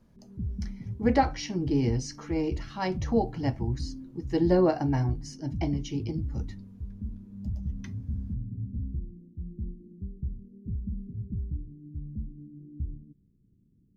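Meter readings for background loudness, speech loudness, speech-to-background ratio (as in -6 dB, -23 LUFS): -38.0 LUFS, -29.0 LUFS, 9.0 dB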